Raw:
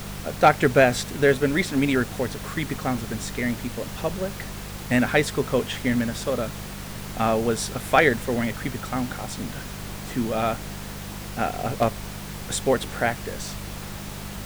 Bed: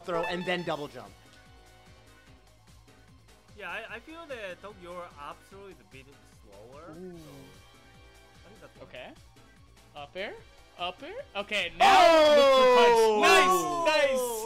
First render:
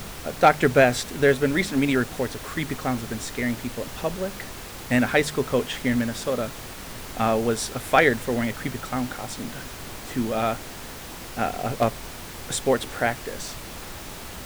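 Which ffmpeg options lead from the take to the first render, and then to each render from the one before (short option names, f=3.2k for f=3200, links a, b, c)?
-af "bandreject=f=50:t=h:w=4,bandreject=f=100:t=h:w=4,bandreject=f=150:t=h:w=4,bandreject=f=200:t=h:w=4"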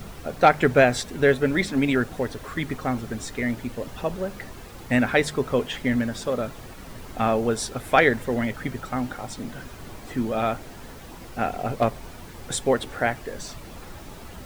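-af "afftdn=nr=9:nf=-38"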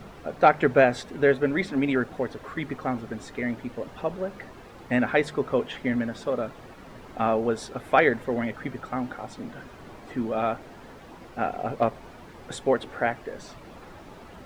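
-af "lowpass=f=1.8k:p=1,lowshelf=f=130:g=-11.5"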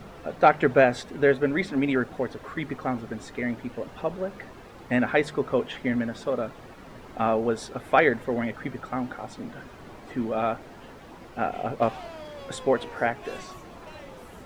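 -filter_complex "[1:a]volume=-22.5dB[a];[0:a][a]amix=inputs=2:normalize=0"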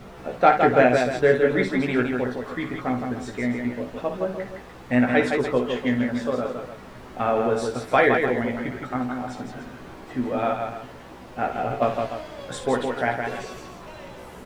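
-filter_complex "[0:a]asplit=2[a][b];[b]adelay=16,volume=-5dB[c];[a][c]amix=inputs=2:normalize=0,aecho=1:1:57|164|296:0.355|0.562|0.251"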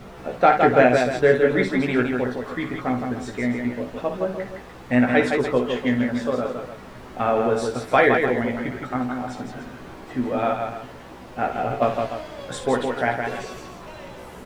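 -af "volume=1.5dB,alimiter=limit=-3dB:level=0:latency=1"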